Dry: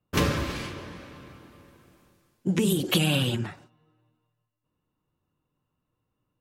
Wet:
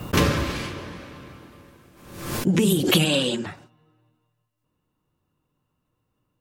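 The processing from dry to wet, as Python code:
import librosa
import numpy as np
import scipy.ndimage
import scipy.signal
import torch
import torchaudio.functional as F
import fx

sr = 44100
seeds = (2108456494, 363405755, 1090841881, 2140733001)

y = fx.cabinet(x, sr, low_hz=190.0, low_slope=24, high_hz=9200.0, hz=(520.0, 760.0, 1400.0, 2300.0, 4200.0, 7700.0), db=(7, -5, -5, -4, 5, 6), at=(3.04, 3.45), fade=0.02)
y = fx.pre_swell(y, sr, db_per_s=66.0)
y = y * 10.0 ** (4.0 / 20.0)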